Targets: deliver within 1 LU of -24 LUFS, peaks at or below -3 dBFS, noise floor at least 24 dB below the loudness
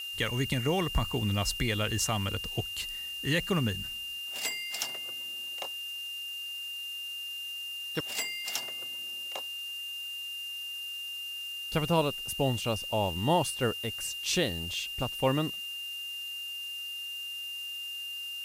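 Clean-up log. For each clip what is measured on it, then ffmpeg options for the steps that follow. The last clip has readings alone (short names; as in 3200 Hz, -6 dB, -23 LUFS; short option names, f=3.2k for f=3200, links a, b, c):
steady tone 2800 Hz; tone level -36 dBFS; noise floor -39 dBFS; noise floor target -56 dBFS; loudness -32.0 LUFS; peak -13.5 dBFS; loudness target -24.0 LUFS
-> -af "bandreject=f=2.8k:w=30"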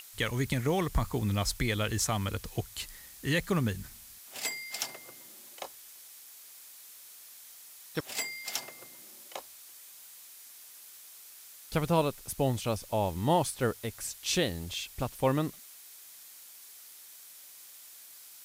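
steady tone none; noise floor -51 dBFS; noise floor target -56 dBFS
-> -af "afftdn=nr=6:nf=-51"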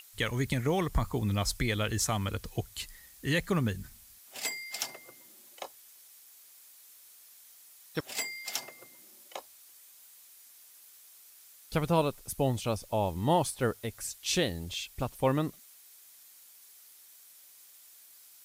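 noise floor -56 dBFS; loudness -32.0 LUFS; peak -13.5 dBFS; loudness target -24.0 LUFS
-> -af "volume=8dB"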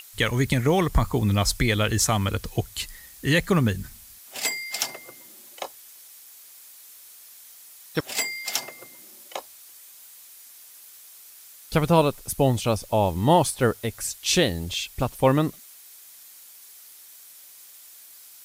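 loudness -24.0 LUFS; peak -5.5 dBFS; noise floor -48 dBFS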